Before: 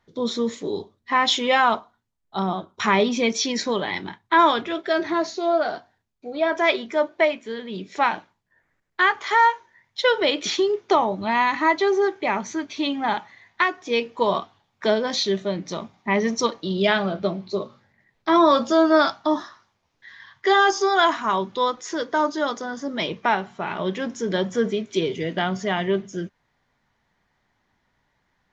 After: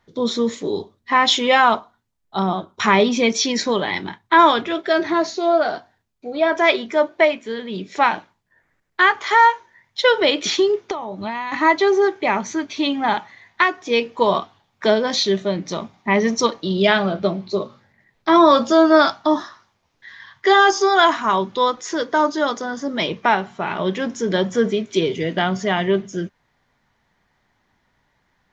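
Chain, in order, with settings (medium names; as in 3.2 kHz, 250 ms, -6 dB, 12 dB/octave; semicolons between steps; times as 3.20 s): 10.76–11.52 s: compression 16:1, threshold -27 dBFS, peak gain reduction 15 dB; trim +4 dB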